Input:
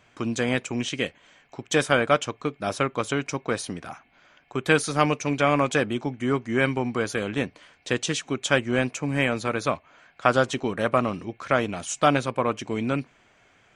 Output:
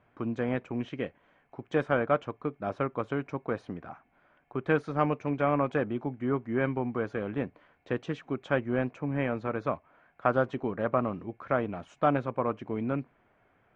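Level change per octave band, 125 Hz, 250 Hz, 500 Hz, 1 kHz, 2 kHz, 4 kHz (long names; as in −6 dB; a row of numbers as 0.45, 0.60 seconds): −4.5, −4.5, −4.5, −6.0, −10.0, −19.5 decibels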